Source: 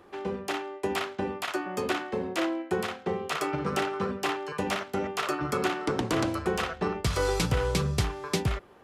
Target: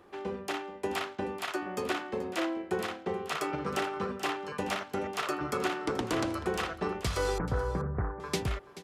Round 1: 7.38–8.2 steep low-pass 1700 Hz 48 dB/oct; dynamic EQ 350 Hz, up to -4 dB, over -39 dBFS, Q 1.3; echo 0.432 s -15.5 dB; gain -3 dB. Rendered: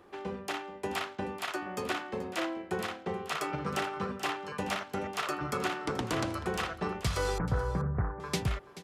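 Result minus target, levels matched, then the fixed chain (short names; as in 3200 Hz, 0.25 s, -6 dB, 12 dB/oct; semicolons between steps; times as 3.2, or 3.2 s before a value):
125 Hz band +3.0 dB
7.38–8.2 steep low-pass 1700 Hz 48 dB/oct; dynamic EQ 140 Hz, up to -4 dB, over -39 dBFS, Q 1.3; echo 0.432 s -15.5 dB; gain -3 dB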